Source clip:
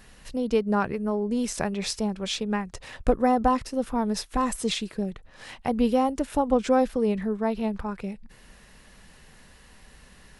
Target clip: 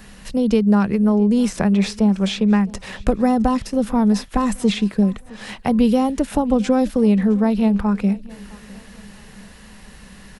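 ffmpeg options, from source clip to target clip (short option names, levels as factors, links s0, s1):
-filter_complex "[0:a]equalizer=f=200:t=o:w=0.29:g=10,acrossover=split=320|3000[s0][s1][s2];[s0]acompressor=threshold=0.0708:ratio=4[s3];[s1]acompressor=threshold=0.0398:ratio=4[s4];[s2]acompressor=threshold=0.00794:ratio=4[s5];[s3][s4][s5]amix=inputs=3:normalize=0,asplit=2[s6][s7];[s7]aecho=0:1:663|1326|1989:0.075|0.0322|0.0139[s8];[s6][s8]amix=inputs=2:normalize=0,volume=2.51"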